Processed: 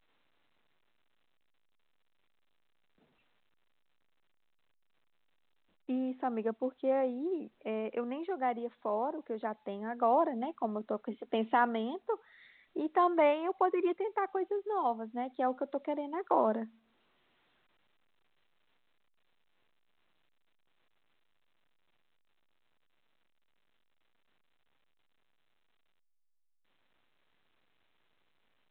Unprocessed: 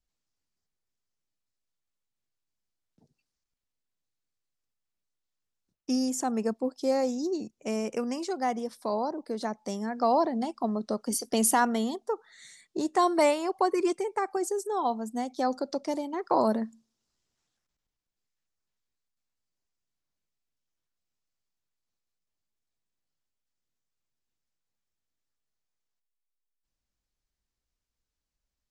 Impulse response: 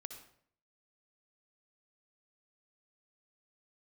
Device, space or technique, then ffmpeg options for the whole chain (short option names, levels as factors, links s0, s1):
telephone: -af "highpass=270,lowpass=3000,volume=0.708" -ar 8000 -c:a pcm_alaw